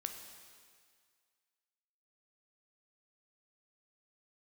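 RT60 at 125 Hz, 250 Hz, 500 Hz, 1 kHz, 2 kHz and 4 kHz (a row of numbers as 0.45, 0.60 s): 1.8, 1.8, 1.9, 2.0, 2.0, 1.9 s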